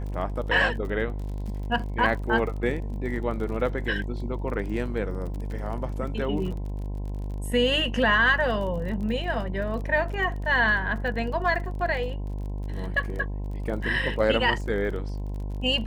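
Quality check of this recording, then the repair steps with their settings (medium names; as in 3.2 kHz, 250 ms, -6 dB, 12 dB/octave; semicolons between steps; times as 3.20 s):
buzz 50 Hz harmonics 21 -31 dBFS
crackle 36 per s -35 dBFS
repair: de-click; de-hum 50 Hz, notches 21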